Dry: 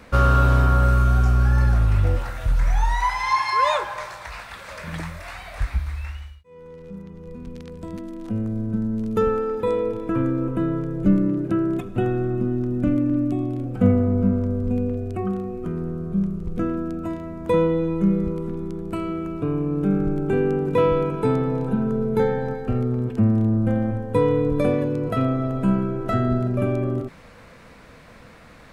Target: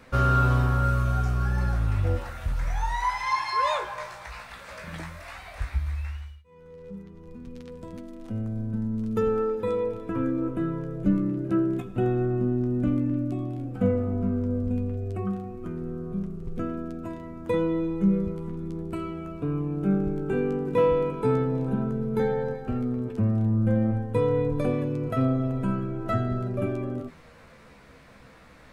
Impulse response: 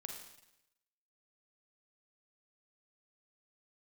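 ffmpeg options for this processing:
-filter_complex "[0:a]flanger=delay=7.7:depth=8.6:regen=38:speed=0.12:shape=sinusoidal,asplit=2[a][b];[1:a]atrim=start_sample=2205,atrim=end_sample=6174[c];[b][c]afir=irnorm=-1:irlink=0,volume=-9.5dB[d];[a][d]amix=inputs=2:normalize=0,volume=-2.5dB"

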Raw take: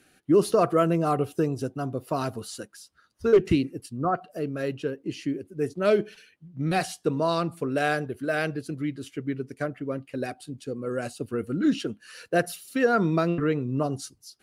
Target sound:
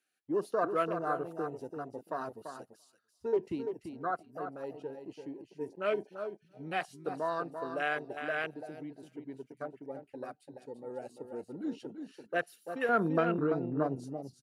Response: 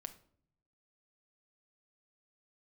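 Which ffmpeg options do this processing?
-af "aecho=1:1:339|678|1017:0.422|0.0717|0.0122,afwtdn=0.0316,asetnsamples=n=441:p=0,asendcmd='12.89 highpass f 280',highpass=f=970:p=1,volume=-3.5dB"

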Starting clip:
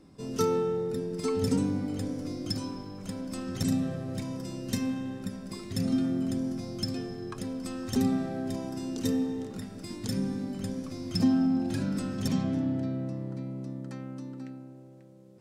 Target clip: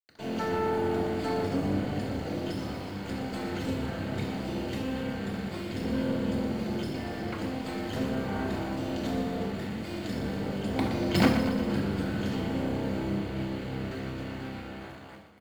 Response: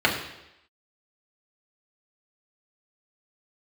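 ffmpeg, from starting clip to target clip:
-filter_complex "[0:a]highpass=63,bandreject=f=60:t=h:w=6,bandreject=f=120:t=h:w=6,bandreject=f=180:t=h:w=6,bandreject=f=240:t=h:w=6,bandreject=f=300:t=h:w=6,alimiter=level_in=0.5dB:limit=-24dB:level=0:latency=1:release=325,volume=-0.5dB,asplit=3[a][b][c];[a]afade=t=out:st=10.73:d=0.02[d];[b]acontrast=28,afade=t=in:st=10.73:d=0.02,afade=t=out:st=11.24:d=0.02[e];[c]afade=t=in:st=11.24:d=0.02[f];[d][e][f]amix=inputs=3:normalize=0,acrusher=bits=5:dc=4:mix=0:aa=0.000001,asplit=8[g][h][i][j][k][l][m][n];[h]adelay=119,afreqshift=-31,volume=-8.5dB[o];[i]adelay=238,afreqshift=-62,volume=-13.1dB[p];[j]adelay=357,afreqshift=-93,volume=-17.7dB[q];[k]adelay=476,afreqshift=-124,volume=-22.2dB[r];[l]adelay=595,afreqshift=-155,volume=-26.8dB[s];[m]adelay=714,afreqshift=-186,volume=-31.4dB[t];[n]adelay=833,afreqshift=-217,volume=-36dB[u];[g][o][p][q][r][s][t][u]amix=inputs=8:normalize=0[v];[1:a]atrim=start_sample=2205,afade=t=out:st=0.14:d=0.01,atrim=end_sample=6615[w];[v][w]afir=irnorm=-1:irlink=0,volume=-8dB"

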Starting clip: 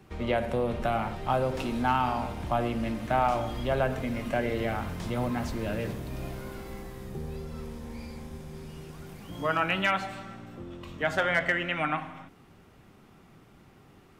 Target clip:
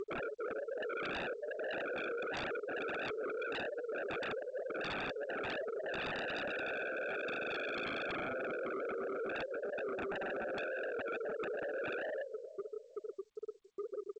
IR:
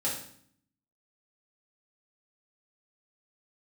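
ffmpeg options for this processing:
-af "afftfilt=real='re*lt(hypot(re,im),0.0398)':imag='im*lt(hypot(re,im),0.0398)':win_size=1024:overlap=0.75,asuperpass=centerf=490:order=8:qfactor=2.3,afftfilt=real='re*gte(hypot(re,im),0.00562)':imag='im*gte(hypot(re,im),0.00562)':win_size=1024:overlap=0.75,acompressor=mode=upward:threshold=-57dB:ratio=2.5,aecho=1:1:460|920:0.1|0.031,aeval=exprs='0.01*sin(PI/2*7.94*val(0)/0.01)':c=same,volume=4dB" -ar 16000 -c:a g722

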